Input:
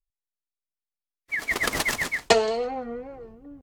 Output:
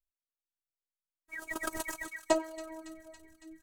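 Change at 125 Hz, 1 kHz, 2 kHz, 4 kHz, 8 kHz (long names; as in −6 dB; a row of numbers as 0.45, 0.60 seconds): −18.5, −11.0, −14.0, −17.0, −9.5 decibels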